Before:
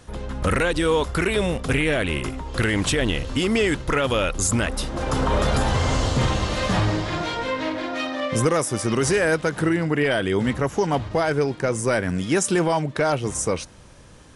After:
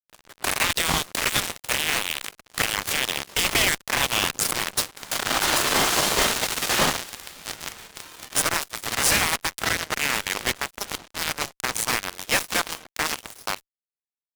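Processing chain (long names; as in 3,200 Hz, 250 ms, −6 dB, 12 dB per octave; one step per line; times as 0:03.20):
gate on every frequency bin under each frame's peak −15 dB weak
harmonic generator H 2 −35 dB, 3 −26 dB, 5 −27 dB, 7 −14 dB, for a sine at −13 dBFS
fuzz pedal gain 45 dB, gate −47 dBFS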